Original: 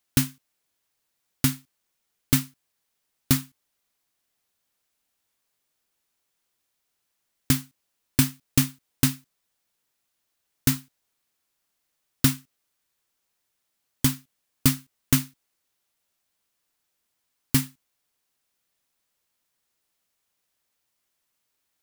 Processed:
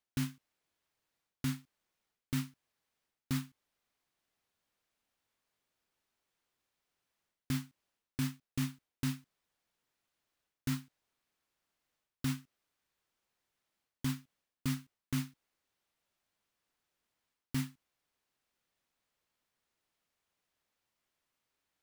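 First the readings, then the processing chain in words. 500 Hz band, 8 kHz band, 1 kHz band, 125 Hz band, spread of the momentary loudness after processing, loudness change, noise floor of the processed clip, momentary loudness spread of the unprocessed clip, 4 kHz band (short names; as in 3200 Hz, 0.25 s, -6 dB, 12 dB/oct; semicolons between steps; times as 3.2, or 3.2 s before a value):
-15.5 dB, -19.0 dB, -11.5 dB, -11.0 dB, 7 LU, -14.0 dB, under -85 dBFS, 13 LU, -15.0 dB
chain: high shelf 5300 Hz -11.5 dB; reverse; compressor 12:1, threshold -29 dBFS, peak gain reduction 15 dB; reverse; gain -2 dB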